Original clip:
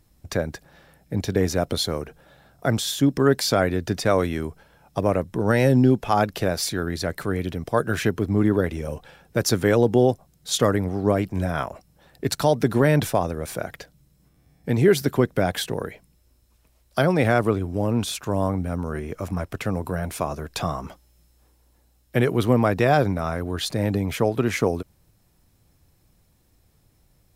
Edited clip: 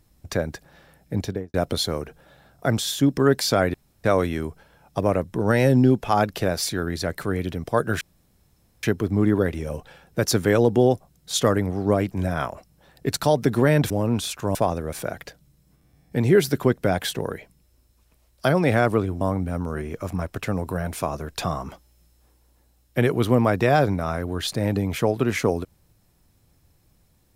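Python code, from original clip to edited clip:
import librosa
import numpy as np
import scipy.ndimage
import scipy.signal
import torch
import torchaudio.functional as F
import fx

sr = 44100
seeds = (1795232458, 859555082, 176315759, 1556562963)

y = fx.studio_fade_out(x, sr, start_s=1.17, length_s=0.37)
y = fx.edit(y, sr, fx.room_tone_fill(start_s=3.74, length_s=0.3),
    fx.insert_room_tone(at_s=8.01, length_s=0.82),
    fx.move(start_s=17.74, length_s=0.65, to_s=13.08), tone=tone)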